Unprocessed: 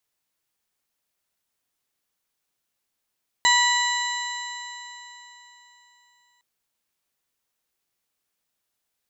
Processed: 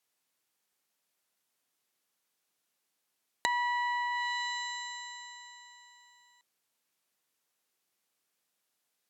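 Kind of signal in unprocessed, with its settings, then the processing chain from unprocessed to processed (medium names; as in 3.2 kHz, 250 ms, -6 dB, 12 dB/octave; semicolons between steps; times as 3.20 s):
stretched partials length 2.96 s, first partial 967 Hz, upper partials 1/-7.5/-1/-19.5/-13/-4 dB, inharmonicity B 0.0038, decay 3.62 s, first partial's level -19.5 dB
high-pass 160 Hz 12 dB/octave; low-pass that closes with the level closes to 1.6 kHz, closed at -23 dBFS; compression 5:1, threshold -28 dBFS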